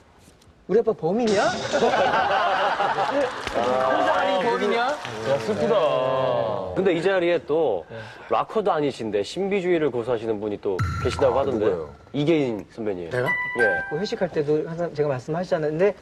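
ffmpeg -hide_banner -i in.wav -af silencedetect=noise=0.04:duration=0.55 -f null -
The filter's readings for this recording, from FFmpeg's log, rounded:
silence_start: 0.00
silence_end: 0.69 | silence_duration: 0.69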